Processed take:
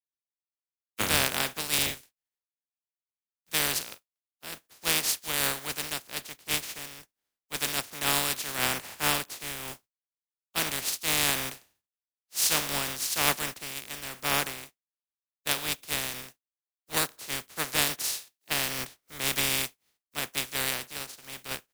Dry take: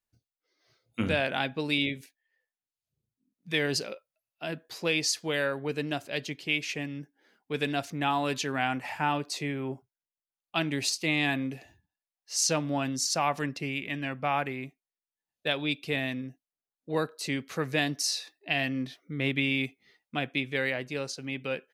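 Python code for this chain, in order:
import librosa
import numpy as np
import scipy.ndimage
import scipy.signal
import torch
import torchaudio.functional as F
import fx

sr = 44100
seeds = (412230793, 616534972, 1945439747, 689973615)

y = fx.spec_flatten(x, sr, power=0.18)
y = fx.band_widen(y, sr, depth_pct=100)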